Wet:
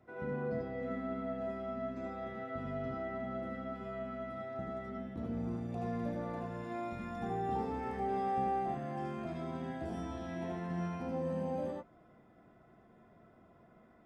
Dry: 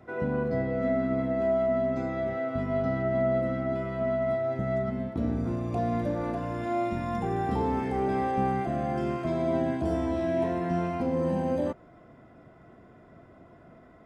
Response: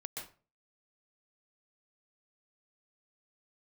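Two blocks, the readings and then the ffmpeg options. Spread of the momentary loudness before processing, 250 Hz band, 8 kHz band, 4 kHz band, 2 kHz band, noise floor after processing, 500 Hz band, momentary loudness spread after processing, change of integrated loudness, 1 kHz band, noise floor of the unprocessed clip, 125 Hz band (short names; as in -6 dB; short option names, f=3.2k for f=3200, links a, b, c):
4 LU, -10.0 dB, n/a, -8.0 dB, -9.0 dB, -63 dBFS, -11.5 dB, 6 LU, -10.0 dB, -7.0 dB, -54 dBFS, -10.5 dB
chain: -filter_complex "[1:a]atrim=start_sample=2205,afade=t=out:st=0.22:d=0.01,atrim=end_sample=10143,asetrate=70560,aresample=44100[a];[0:a][a]afir=irnorm=-1:irlink=0,volume=-3dB"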